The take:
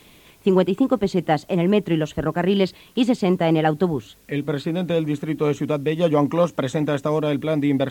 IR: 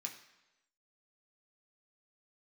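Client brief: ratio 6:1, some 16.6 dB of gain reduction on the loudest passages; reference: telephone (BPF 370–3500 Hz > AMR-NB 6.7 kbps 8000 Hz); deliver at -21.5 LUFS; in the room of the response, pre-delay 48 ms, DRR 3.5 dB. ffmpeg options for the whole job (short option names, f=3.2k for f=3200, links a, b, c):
-filter_complex "[0:a]acompressor=threshold=-32dB:ratio=6,asplit=2[a][b];[1:a]atrim=start_sample=2205,adelay=48[c];[b][c]afir=irnorm=-1:irlink=0,volume=-1dB[d];[a][d]amix=inputs=2:normalize=0,highpass=370,lowpass=3.5k,volume=18dB" -ar 8000 -c:a libopencore_amrnb -b:a 6700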